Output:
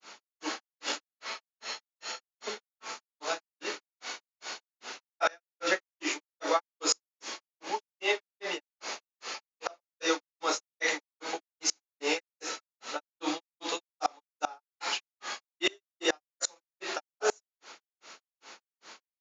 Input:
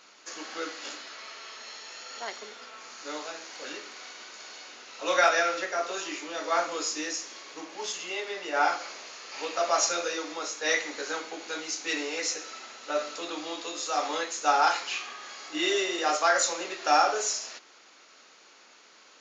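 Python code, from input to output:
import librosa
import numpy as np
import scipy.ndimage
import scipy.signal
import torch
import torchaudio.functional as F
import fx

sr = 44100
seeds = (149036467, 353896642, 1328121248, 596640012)

y = fx.granulator(x, sr, seeds[0], grain_ms=207.0, per_s=2.5, spray_ms=100.0, spread_st=0)
y = fx.peak_eq(y, sr, hz=870.0, db=5.0, octaves=0.21)
y = fx.gate_flip(y, sr, shuts_db=-21.0, range_db=-31)
y = F.gain(torch.from_numpy(y), 7.5).numpy()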